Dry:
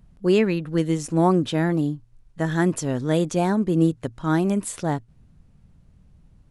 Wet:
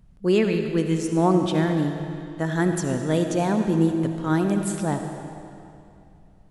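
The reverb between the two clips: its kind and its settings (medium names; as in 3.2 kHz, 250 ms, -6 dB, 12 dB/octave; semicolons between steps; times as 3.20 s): algorithmic reverb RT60 2.6 s, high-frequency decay 0.9×, pre-delay 30 ms, DRR 5 dB; trim -1.5 dB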